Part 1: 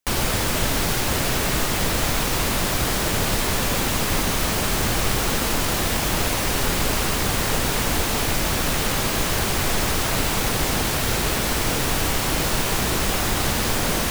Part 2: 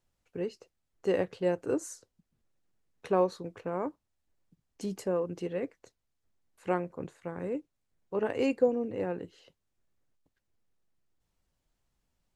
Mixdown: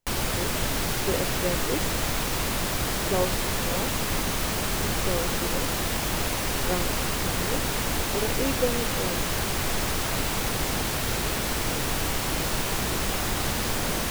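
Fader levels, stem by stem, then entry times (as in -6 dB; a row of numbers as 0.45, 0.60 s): -5.0, -1.0 dB; 0.00, 0.00 s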